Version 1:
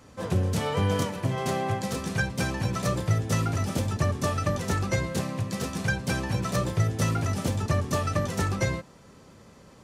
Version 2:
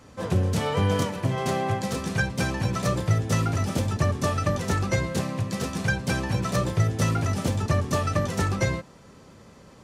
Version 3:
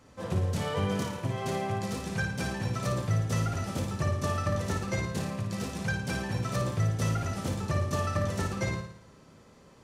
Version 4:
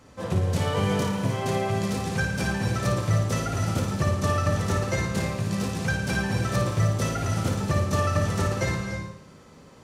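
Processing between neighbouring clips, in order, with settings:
high shelf 10000 Hz -4 dB; gain +2 dB
flutter echo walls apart 9.6 m, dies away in 0.6 s; gain -7 dB
non-linear reverb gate 0.33 s rising, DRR 5.5 dB; gain +4.5 dB

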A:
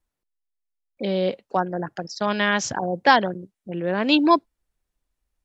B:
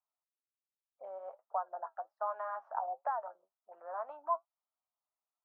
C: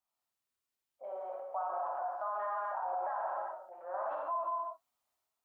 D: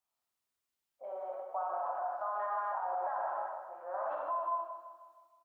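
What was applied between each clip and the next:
flange 1.3 Hz, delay 6.5 ms, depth 4.2 ms, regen +53%; compressor 6:1, threshold -26 dBFS, peak gain reduction 11 dB; Chebyshev band-pass 640–1300 Hz, order 3; gain -1 dB
non-linear reverb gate 0.42 s falling, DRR -5 dB; transient shaper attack -1 dB, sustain +4 dB; limiter -28.5 dBFS, peak gain reduction 9.5 dB
feedback echo 0.157 s, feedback 53%, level -9.5 dB

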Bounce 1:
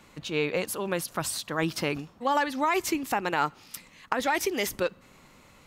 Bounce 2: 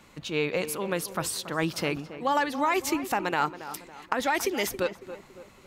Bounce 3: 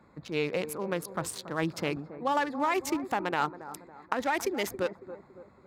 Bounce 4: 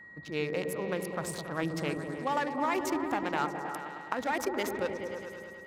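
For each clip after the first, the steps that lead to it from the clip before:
tape echo 0.278 s, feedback 49%, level -11.5 dB, low-pass 1600 Hz
Wiener smoothing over 15 samples; HPF 56 Hz; gain -2 dB
whine 1900 Hz -45 dBFS; repeats that get brighter 0.105 s, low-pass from 400 Hz, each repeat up 1 oct, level -3 dB; gain -3 dB

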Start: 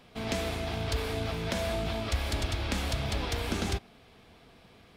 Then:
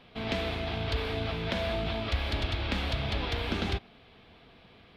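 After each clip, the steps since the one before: resonant high shelf 5200 Hz -12.5 dB, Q 1.5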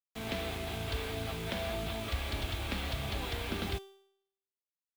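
bit-crush 7-bit; resonator 390 Hz, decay 0.7 s, mix 70%; gain +5 dB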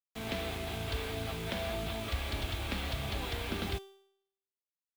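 nothing audible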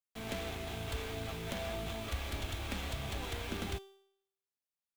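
tracing distortion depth 0.15 ms; gain -3 dB

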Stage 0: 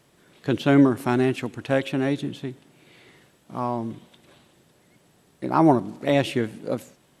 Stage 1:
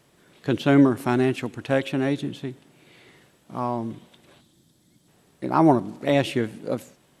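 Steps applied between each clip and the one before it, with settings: spectral gain 4.41–5.08, 350–3100 Hz -10 dB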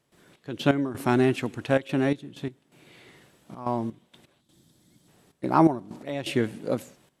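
step gate ".xx..x..xxxxxxx" 127 bpm -12 dB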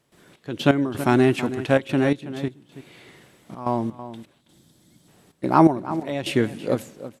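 outdoor echo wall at 56 m, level -13 dB; gain +4 dB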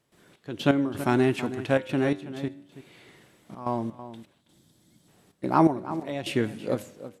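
flange 0.61 Hz, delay 9.2 ms, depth 1.7 ms, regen +90%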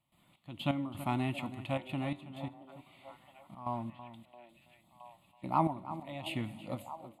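fixed phaser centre 1600 Hz, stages 6; delay with a stepping band-pass 0.67 s, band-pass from 480 Hz, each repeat 0.7 oct, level -11.5 dB; gain -5.5 dB

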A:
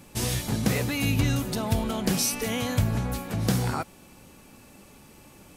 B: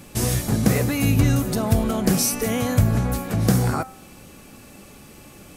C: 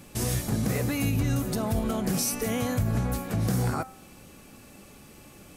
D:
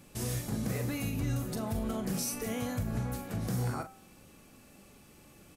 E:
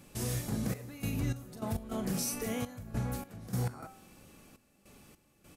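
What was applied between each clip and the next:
notch 920 Hz, Q 9.1; dynamic EQ 3300 Hz, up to -8 dB, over -47 dBFS, Q 0.94; de-hum 259.7 Hz, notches 29; gain +6.5 dB
limiter -12.5 dBFS, peak gain reduction 6.5 dB; gain -5 dB
doubler 41 ms -9 dB; gain -7.5 dB
step gate "xxxxx..xx..x." 102 bpm -12 dB

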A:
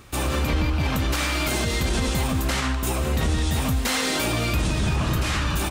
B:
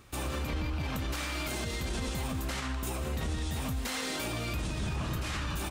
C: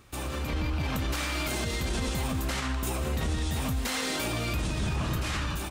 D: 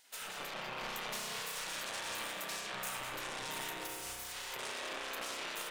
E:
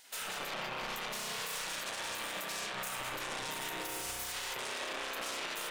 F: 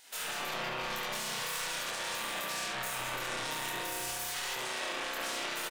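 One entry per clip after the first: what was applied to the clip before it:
limiter -17 dBFS, peak gain reduction 3.5 dB; gain -8.5 dB
AGC gain up to 4 dB
soft clip -31.5 dBFS, distortion -11 dB; spectral gate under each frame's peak -20 dB weak; spring tank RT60 2.2 s, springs 32 ms, chirp 70 ms, DRR -2.5 dB
limiter -36 dBFS, peak gain reduction 9 dB; gain +6.5 dB
early reflections 24 ms -3.5 dB, 70 ms -4.5 dB

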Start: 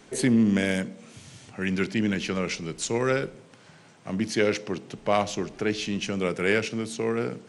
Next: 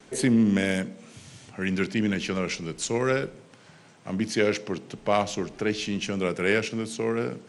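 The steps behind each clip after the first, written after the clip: gate with hold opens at -48 dBFS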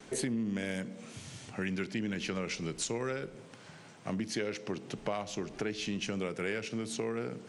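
compressor 6:1, threshold -32 dBFS, peak gain reduction 14 dB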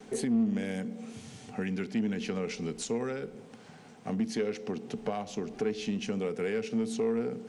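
added noise pink -77 dBFS; small resonant body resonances 230/440/750 Hz, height 12 dB, ringing for 60 ms; in parallel at -7 dB: overloaded stage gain 24.5 dB; on the sum: gain -6 dB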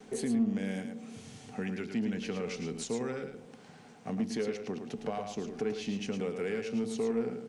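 echo 0.109 s -7 dB; gain -2.5 dB

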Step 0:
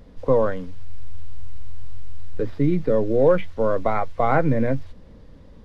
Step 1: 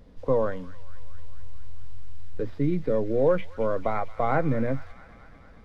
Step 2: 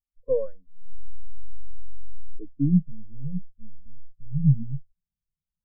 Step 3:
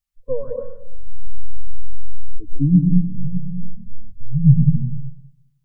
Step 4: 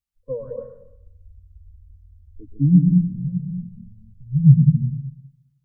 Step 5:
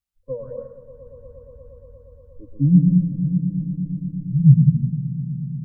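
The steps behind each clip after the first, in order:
thin delay 0.223 s, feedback 71%, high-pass 1600 Hz, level -12.5 dB; gain -5 dB
low-pass sweep 2300 Hz -> 170 Hz, 0.87–2.89; spectral expander 2.5:1; gain +1.5 dB
bell 420 Hz -10.5 dB 1.4 oct; on a send at -2 dB: reverb RT60 0.80 s, pre-delay 0.119 s; on the sum: gain +8.5 dB
HPF 42 Hz 6 dB/oct; bell 120 Hz +7 dB 2.4 oct; gain -5.5 dB
notch 460 Hz, Q 14; swelling echo 0.118 s, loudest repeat 5, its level -18 dB

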